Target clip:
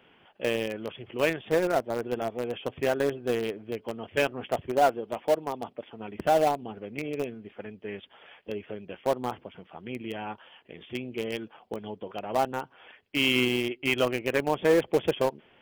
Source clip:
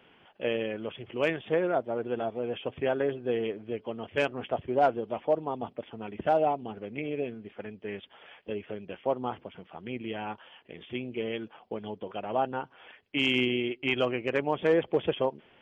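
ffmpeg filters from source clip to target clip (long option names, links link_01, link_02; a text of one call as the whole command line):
ffmpeg -i in.wav -filter_complex "[0:a]asplit=3[link_01][link_02][link_03];[link_01]afade=type=out:start_time=4.7:duration=0.02[link_04];[link_02]lowshelf=frequency=180:gain=-7,afade=type=in:start_time=4.7:duration=0.02,afade=type=out:start_time=5.99:duration=0.02[link_05];[link_03]afade=type=in:start_time=5.99:duration=0.02[link_06];[link_04][link_05][link_06]amix=inputs=3:normalize=0,asplit=2[link_07][link_08];[link_08]acrusher=bits=3:mix=0:aa=0.000001,volume=-11dB[link_09];[link_07][link_09]amix=inputs=2:normalize=0" out.wav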